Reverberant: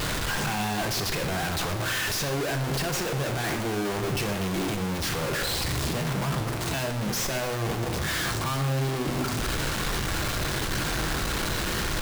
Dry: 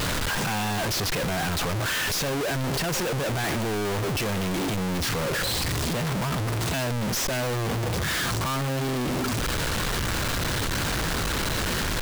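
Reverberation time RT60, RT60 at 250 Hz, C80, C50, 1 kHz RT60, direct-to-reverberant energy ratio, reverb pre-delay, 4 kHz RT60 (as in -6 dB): 1.0 s, 1.1 s, 12.0 dB, 9.0 dB, 0.95 s, 5.5 dB, 3 ms, 0.80 s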